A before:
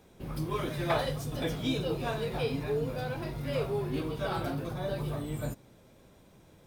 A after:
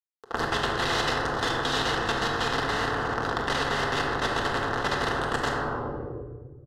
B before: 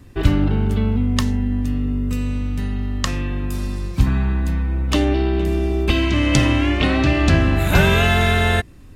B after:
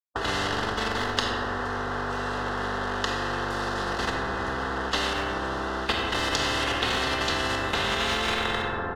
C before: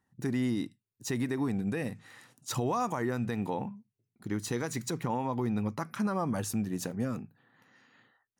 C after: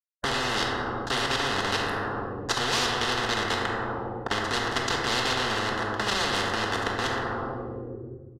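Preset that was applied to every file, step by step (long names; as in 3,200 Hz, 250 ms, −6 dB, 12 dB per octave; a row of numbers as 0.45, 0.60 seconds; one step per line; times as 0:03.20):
stylus tracing distortion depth 0.027 ms
bit reduction 5 bits
band-pass filter 100–2,100 Hz
tilt shelving filter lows +6.5 dB, about 710 Hz
notch filter 940 Hz, Q 10
output level in coarse steps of 15 dB
low shelf with overshoot 350 Hz −7.5 dB, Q 3
phaser with its sweep stopped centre 620 Hz, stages 6
far-end echo of a speakerphone 90 ms, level −18 dB
rectangular room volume 920 cubic metres, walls mixed, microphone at 1.6 metres
boost into a limiter +13.5 dB
every bin compressed towards the loudest bin 10 to 1
loudness normalisation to −27 LKFS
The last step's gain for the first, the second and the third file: −7.5, −4.0, −5.0 decibels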